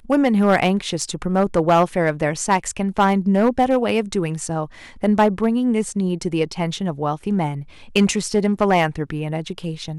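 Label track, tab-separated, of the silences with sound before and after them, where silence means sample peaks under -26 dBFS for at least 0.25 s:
4.650000	5.030000	silence
7.620000	7.960000	silence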